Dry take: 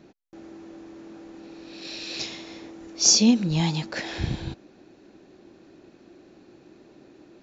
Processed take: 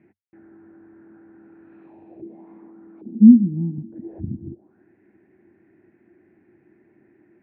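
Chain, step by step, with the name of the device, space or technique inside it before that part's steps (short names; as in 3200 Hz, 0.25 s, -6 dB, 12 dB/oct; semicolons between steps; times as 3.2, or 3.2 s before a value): 2.25–3.78 resonant low shelf 150 Hz -6.5 dB, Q 3; envelope filter bass rig (envelope low-pass 250–2400 Hz down, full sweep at -26.5 dBFS; speaker cabinet 63–2300 Hz, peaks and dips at 95 Hz +10 dB, 140 Hz +4 dB, 210 Hz +6 dB, 350 Hz +6 dB, 540 Hz -7 dB, 1200 Hz -9 dB); gain -10 dB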